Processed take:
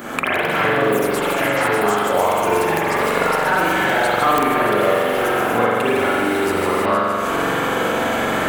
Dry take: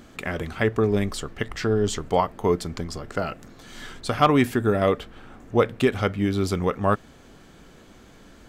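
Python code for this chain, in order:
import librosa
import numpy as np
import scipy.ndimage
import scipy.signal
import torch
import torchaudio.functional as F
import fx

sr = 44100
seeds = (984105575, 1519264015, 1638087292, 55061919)

y = fx.recorder_agc(x, sr, target_db=-15.0, rise_db_per_s=78.0, max_gain_db=30)
y = fx.highpass(y, sr, hz=1300.0, slope=6)
y = fx.echo_wet_highpass(y, sr, ms=155, feedback_pct=72, hz=4000.0, wet_db=-5.0)
y = fx.echo_pitch(y, sr, ms=119, semitones=4, count=3, db_per_echo=-3.0)
y = fx.rev_spring(y, sr, rt60_s=1.8, pass_ms=(43,), chirp_ms=40, drr_db=-8.5)
y = (np.mod(10.0 ** (4.5 / 20.0) * y + 1.0, 2.0) - 1.0) / 10.0 ** (4.5 / 20.0)
y = fx.peak_eq(y, sr, hz=4600.0, db=-15.0, octaves=1.9)
y = fx.notch(y, sr, hz=1900.0, q=30.0)
y = fx.band_squash(y, sr, depth_pct=70)
y = y * 10.0 ** (4.0 / 20.0)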